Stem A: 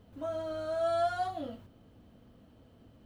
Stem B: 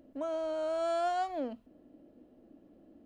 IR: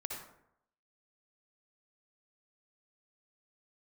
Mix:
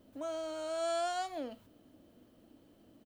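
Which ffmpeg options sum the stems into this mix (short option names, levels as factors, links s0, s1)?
-filter_complex "[0:a]lowshelf=f=150:g=-9,volume=0.531[s0];[1:a]adynamicequalizer=threshold=0.00501:dfrequency=1500:dqfactor=0.7:tfrequency=1500:tqfactor=0.7:attack=5:release=100:ratio=0.375:range=2.5:mode=boostabove:tftype=highshelf,adelay=0.5,volume=0.562,asplit=2[s1][s2];[s2]apad=whole_len=134527[s3];[s0][s3]sidechaincompress=threshold=0.00631:ratio=8:attack=16:release=237[s4];[s4][s1]amix=inputs=2:normalize=0,highshelf=f=4800:g=11"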